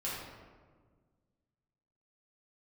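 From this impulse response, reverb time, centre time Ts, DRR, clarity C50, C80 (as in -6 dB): 1.6 s, 87 ms, -8.5 dB, -1.0 dB, 2.0 dB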